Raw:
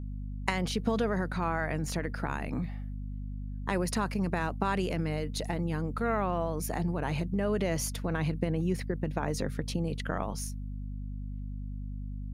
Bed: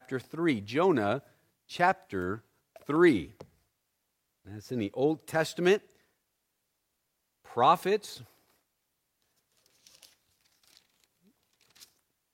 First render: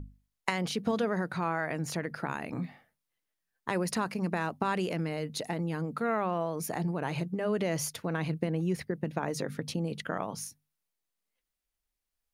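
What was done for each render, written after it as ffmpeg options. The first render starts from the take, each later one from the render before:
-af "bandreject=f=50:t=h:w=6,bandreject=f=100:t=h:w=6,bandreject=f=150:t=h:w=6,bandreject=f=200:t=h:w=6,bandreject=f=250:t=h:w=6"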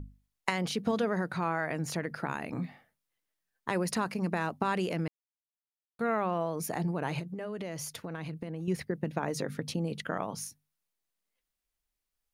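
-filter_complex "[0:a]asettb=1/sr,asplit=3[a][b][c];[a]atrim=end=7.194[d];[b]atrim=start=7.19:end=8.68,asetpts=PTS-STARTPTS,afade=t=in:d=0.004:c=qsin,afade=t=out:st=1.486:d=0.004:c=qsin,acompressor=threshold=-36dB:ratio=3:attack=3.2:release=140:knee=1:detection=peak[e];[c]atrim=start=8.676[f];[d][e]acrossfade=d=0.004:c1=hsin:c2=qsin[g];[g][f]acrossfade=d=0.004:c1=qsin:c2=hsin,asplit=3[h][i][j];[h]atrim=end=5.08,asetpts=PTS-STARTPTS,afade=t=out:st=5.076:d=0.004:c=hsin[k];[i]atrim=start=5.08:end=5.99,asetpts=PTS-STARTPTS,volume=0[l];[j]atrim=start=5.99,asetpts=PTS-STARTPTS,afade=t=in:d=0.004:c=hsin[m];[k][l][m]concat=n=3:v=0:a=1"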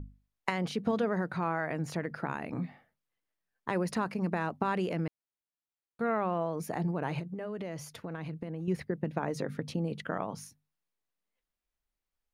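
-af "highshelf=f=3.6k:g=-10"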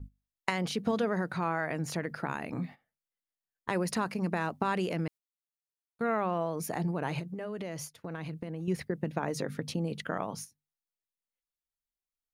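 -af "agate=range=-13dB:threshold=-44dB:ratio=16:detection=peak,highshelf=f=3.5k:g=8"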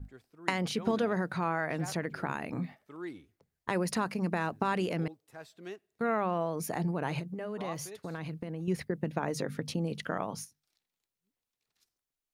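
-filter_complex "[1:a]volume=-19.5dB[a];[0:a][a]amix=inputs=2:normalize=0"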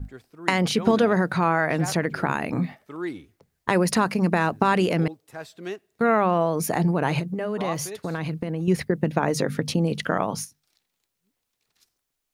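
-af "volume=10dB,alimiter=limit=-3dB:level=0:latency=1"

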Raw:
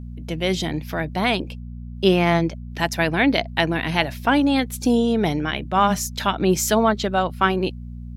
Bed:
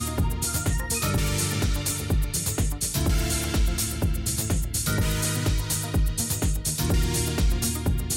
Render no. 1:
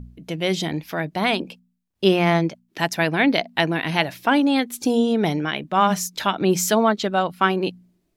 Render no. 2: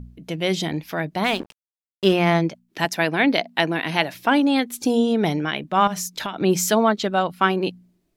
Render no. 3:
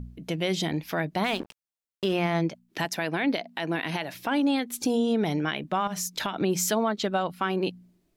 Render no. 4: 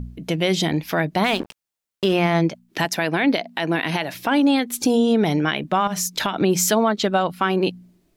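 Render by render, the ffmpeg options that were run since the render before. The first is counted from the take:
-af "bandreject=f=60:t=h:w=4,bandreject=f=120:t=h:w=4,bandreject=f=180:t=h:w=4,bandreject=f=240:t=h:w=4"
-filter_complex "[0:a]asettb=1/sr,asplit=3[a][b][c];[a]atrim=end=1.244[d];[b]atrim=start=1.24:end=2.13,asetpts=PTS-STARTPTS,afade=t=in:d=0.004:c=qsin,afade=t=out:st=0.886:d=0.004:c=qsin,aeval=exprs='sgn(val(0))*max(abs(val(0))-0.0188,0)':c=same[e];[c]atrim=start=2.126[f];[d][e]acrossfade=d=0.004:c1=hsin:c2=qsin[g];[g][f]acrossfade=d=0.004:c1=qsin:c2=hsin,asettb=1/sr,asplit=3[h][i][j];[h]atrim=end=2.854[k];[i]atrim=start=2.85:end=4.15,asetpts=PTS-STARTPTS,afade=t=in:d=0.004:c=qsin,afade=t=out:st=1.296:d=0.004:c=qsin,highpass=170[l];[j]atrim=start=4.146[m];[k][l]acrossfade=d=0.004:c1=hsin:c2=qsin[n];[n][m]acrossfade=d=0.004:c1=qsin:c2=hsin,asettb=1/sr,asplit=3[o][p][q];[o]atrim=end=5.874[r];[p]atrim=start=5.87:end=6.4,asetpts=PTS-STARTPTS,afade=t=in:d=0.004:c=qsin,afade=t=out:st=0.526:d=0.004:c=qsin,acompressor=threshold=-23dB:ratio=10:attack=3.2:release=140:knee=1:detection=peak[s];[q]atrim=start=6.396[t];[r][s]acrossfade=d=0.004:c1=hsin:c2=qsin[u];[u][t]acrossfade=d=0.004:c1=qsin:c2=hsin"
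-af "acompressor=threshold=-28dB:ratio=1.5,alimiter=limit=-16dB:level=0:latency=1:release=93"
-af "volume=7dB"

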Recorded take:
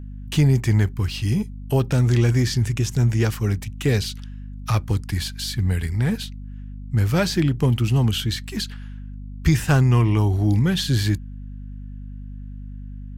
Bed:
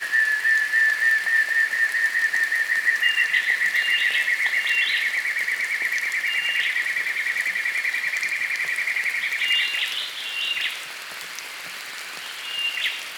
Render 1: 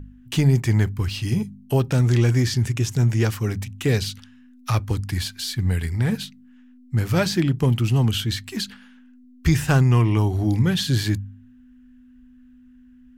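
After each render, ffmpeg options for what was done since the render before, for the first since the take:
-af "bandreject=f=50:t=h:w=4,bandreject=f=100:t=h:w=4,bandreject=f=150:t=h:w=4,bandreject=f=200:t=h:w=4"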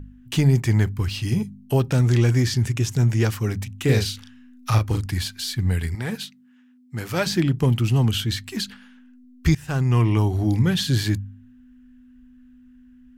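-filter_complex "[0:a]asettb=1/sr,asplit=3[a][b][c];[a]atrim=end=3.844[d];[b]atrim=start=3.84:end=5.06,asetpts=PTS-STARTPTS,afade=t=in:d=0.004:c=qsin,afade=t=out:st=1.216:d=0.004:c=qsin,asplit=2[e][f];[f]adelay=37,volume=-4dB[g];[e][g]amix=inputs=2:normalize=0,atrim=end_sample=53802[h];[c]atrim=start=5.056[i];[d][h]acrossfade=d=0.004:c1=hsin:c2=qsin[j];[j][i]acrossfade=d=0.004:c1=qsin:c2=hsin,asettb=1/sr,asplit=3[k][l][m];[k]atrim=end=5.954[n];[l]atrim=start=5.95:end=7.27,asetpts=PTS-STARTPTS,afade=t=in:d=0.004:c=qsin,afade=t=out:st=1.316:d=0.004:c=qsin,highpass=f=350:p=1[o];[m]atrim=start=7.266[p];[n][o]acrossfade=d=0.004:c1=hsin:c2=qsin[q];[q][p]acrossfade=d=0.004:c1=qsin:c2=hsin,asplit=2[r][s];[r]atrim=end=9.55,asetpts=PTS-STARTPTS,afade=t=out:st=9.546:d=0.004:c=hsin:silence=0.0707946[t];[s]atrim=start=9.55,asetpts=PTS-STARTPTS,afade=t=in:d=0.49:silence=0.0707946[u];[t][u]concat=n=2:v=0:a=1"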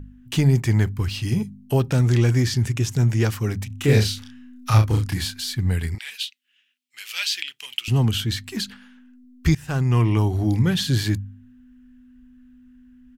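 -filter_complex "[0:a]asplit=3[a][b][c];[a]afade=t=out:st=3.7:d=0.02[d];[b]asplit=2[e][f];[f]adelay=28,volume=-3.5dB[g];[e][g]amix=inputs=2:normalize=0,afade=t=in:st=3.7:d=0.02,afade=t=out:st=5.39:d=0.02[h];[c]afade=t=in:st=5.39:d=0.02[i];[d][h][i]amix=inputs=3:normalize=0,asettb=1/sr,asplit=3[j][k][l];[j]atrim=end=5.984[m];[k]atrim=start=5.98:end=7.88,asetpts=PTS-STARTPTS,afade=t=in:d=0.004:c=qsin,afade=t=out:st=1.896:d=0.004:c=qsin,highpass=f=2.8k:t=q:w=3[n];[l]atrim=start=7.876[o];[m][n]acrossfade=d=0.004:c1=hsin:c2=qsin[p];[p][o]acrossfade=d=0.004:c1=qsin:c2=hsin"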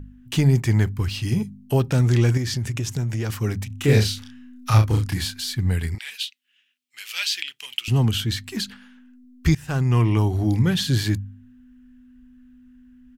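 -filter_complex "[0:a]asettb=1/sr,asplit=3[a][b][c];[a]atrim=end=2.374[d];[b]atrim=start=2.37:end=3.3,asetpts=PTS-STARTPTS,afade=t=in:d=0.004:c=qsin,afade=t=out:st=0.926:d=0.004:c=qsin,acompressor=threshold=-21dB:ratio=6:attack=3.2:release=140:knee=1:detection=peak[e];[c]atrim=start=3.296[f];[d][e]acrossfade=d=0.004:c1=hsin:c2=qsin[g];[g][f]acrossfade=d=0.004:c1=qsin:c2=hsin"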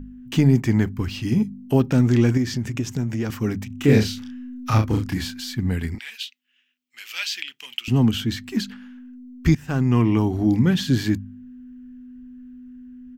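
-af "equalizer=f=100:t=o:w=0.67:g=-5,equalizer=f=250:t=o:w=0.67:g=9,equalizer=f=4k:t=o:w=0.67:g=-4,equalizer=f=10k:t=o:w=0.67:g=-10"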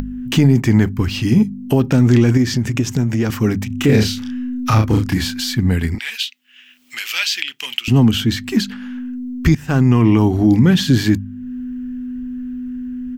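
-filter_complex "[0:a]asplit=2[a][b];[b]acompressor=mode=upward:threshold=-21dB:ratio=2.5,volume=2.5dB[c];[a][c]amix=inputs=2:normalize=0,alimiter=limit=-3.5dB:level=0:latency=1:release=33"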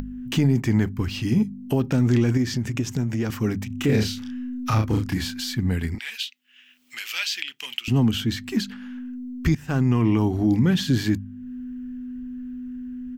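-af "volume=-7.5dB"

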